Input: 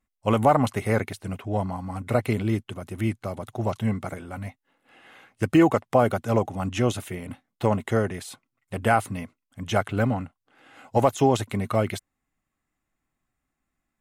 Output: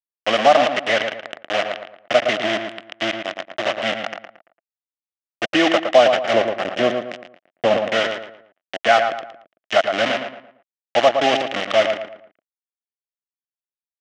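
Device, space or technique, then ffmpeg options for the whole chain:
hand-held game console: -filter_complex "[0:a]acrusher=bits=3:mix=0:aa=0.000001,highpass=410,equalizer=f=430:t=q:w=4:g=-8,equalizer=f=650:t=q:w=4:g=9,equalizer=f=950:t=q:w=4:g=-10,equalizer=f=1.9k:t=q:w=4:g=5,equalizer=f=3k:t=q:w=4:g=8,equalizer=f=4.4k:t=q:w=4:g=-6,lowpass=f=5.3k:w=0.5412,lowpass=f=5.3k:w=1.3066,asettb=1/sr,asplit=3[a][b][c];[a]atrim=end=6.334[d];[b]atrim=start=6.33:end=7.9,asetpts=PTS-STARTPTS,afade=t=in:d=0.004:c=qsin,afade=t=out:st=1.566:d=0.004:c=qsin,tiltshelf=f=970:g=5.5[e];[c]atrim=start=7.896[f];[d][e]acrossfade=d=0.004:c1=hsin:c2=qsin[g];[g][f]acrossfade=d=0.004:c1=qsin:c2=hsin,asplit=2[h][i];[i]adelay=113,lowpass=f=2.5k:p=1,volume=-6dB,asplit=2[j][k];[k]adelay=113,lowpass=f=2.5k:p=1,volume=0.37,asplit=2[l][m];[m]adelay=113,lowpass=f=2.5k:p=1,volume=0.37,asplit=2[n][o];[o]adelay=113,lowpass=f=2.5k:p=1,volume=0.37[p];[h][j][l][n][p]amix=inputs=5:normalize=0,volume=4.5dB"

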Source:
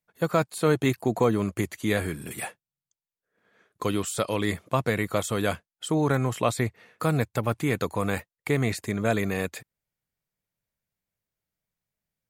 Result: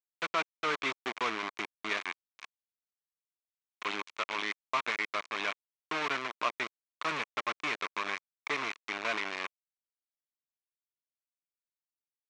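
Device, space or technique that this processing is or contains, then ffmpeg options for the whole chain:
hand-held game console: -af "acrusher=bits=3:mix=0:aa=0.000001,highpass=500,equalizer=f=510:t=q:w=4:g=-10,equalizer=f=770:t=q:w=4:g=-5,equalizer=f=1.1k:t=q:w=4:g=6,equalizer=f=2.3k:t=q:w=4:g=7,equalizer=f=4.8k:t=q:w=4:g=-5,lowpass=f=5.2k:w=0.5412,lowpass=f=5.2k:w=1.3066,volume=-6.5dB"

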